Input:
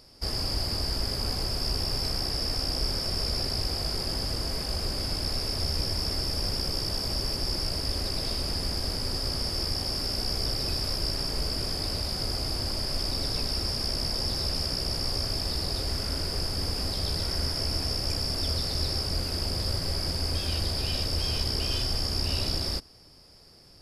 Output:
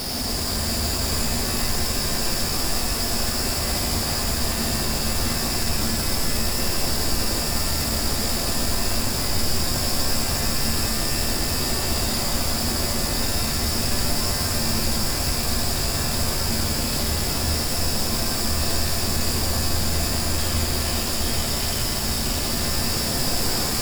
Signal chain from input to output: one-bit comparator; small resonant body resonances 230/700/3700 Hz, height 10 dB, ringing for 90 ms; pitch-shifted reverb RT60 3 s, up +7 st, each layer -2 dB, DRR -0.5 dB

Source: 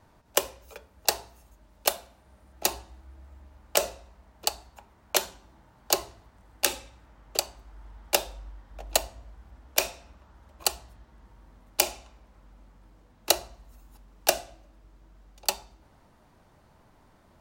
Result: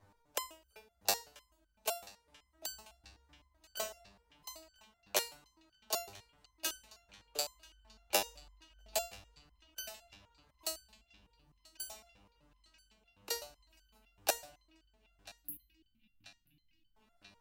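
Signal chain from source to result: 10.67–11.87 s: peaking EQ 2.1 kHz -7.5 dB 2.6 oct; 15.29–16.95 s: spectral selection erased 330–11000 Hz; band-passed feedback delay 986 ms, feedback 79%, band-pass 2.7 kHz, level -20 dB; resonator arpeggio 7.9 Hz 100–1500 Hz; trim +3 dB

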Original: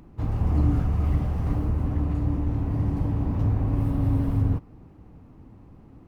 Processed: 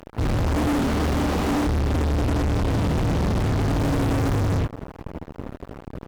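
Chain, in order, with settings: 0.49–1.67 s: resonant low shelf 170 Hz -11.5 dB, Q 1.5; early reflections 26 ms -15 dB, 79 ms -4.5 dB; fuzz box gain 43 dB, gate -43 dBFS; trim -7 dB

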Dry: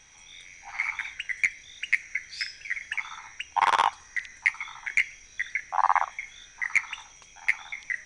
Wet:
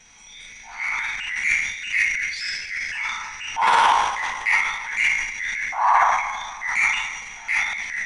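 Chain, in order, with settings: two-slope reverb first 0.37 s, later 2.9 s, from -17 dB, DRR -8 dB; transient shaper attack -6 dB, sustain +10 dB; trim -2.5 dB

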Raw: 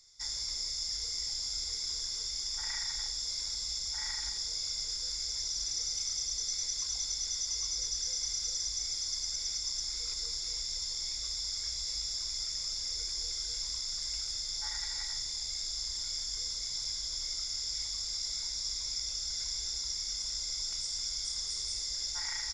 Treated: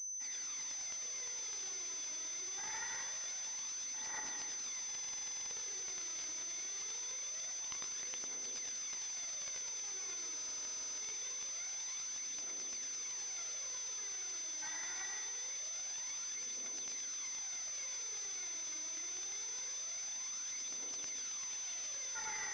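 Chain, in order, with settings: phaser 0.24 Hz, delay 3.3 ms, feedback 76%; brick-wall FIR high-pass 210 Hz; pre-echo 82 ms -23.5 dB; reverberation RT60 1.4 s, pre-delay 71 ms, DRR 3 dB; buffer glitch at 4.86/10.35 s, samples 2048, times 13; class-D stage that switches slowly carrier 6.1 kHz; trim -4 dB

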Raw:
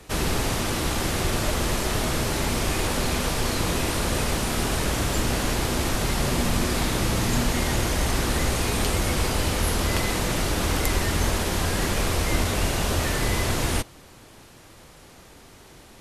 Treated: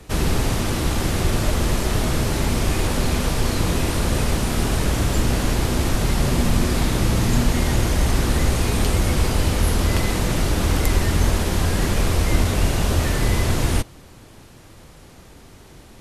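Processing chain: bass shelf 300 Hz +7 dB

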